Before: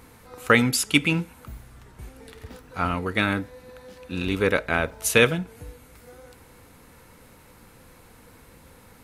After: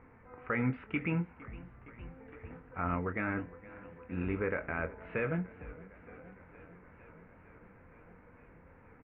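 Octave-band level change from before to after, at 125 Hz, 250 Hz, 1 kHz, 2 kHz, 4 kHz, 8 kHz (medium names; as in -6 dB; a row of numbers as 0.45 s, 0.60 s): -8.0 dB, -10.0 dB, -11.0 dB, -14.0 dB, under -30 dB, under -40 dB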